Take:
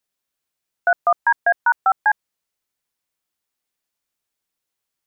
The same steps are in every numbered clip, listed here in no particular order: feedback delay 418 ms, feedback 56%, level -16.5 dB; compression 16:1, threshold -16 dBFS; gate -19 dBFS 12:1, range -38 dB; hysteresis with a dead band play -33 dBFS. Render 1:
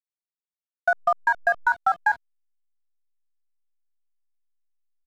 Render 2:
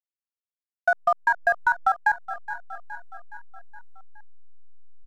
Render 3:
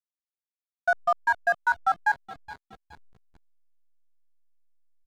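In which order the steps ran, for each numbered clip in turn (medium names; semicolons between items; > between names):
feedback delay > gate > hysteresis with a dead band > compression; gate > hysteresis with a dead band > feedback delay > compression; compression > gate > feedback delay > hysteresis with a dead band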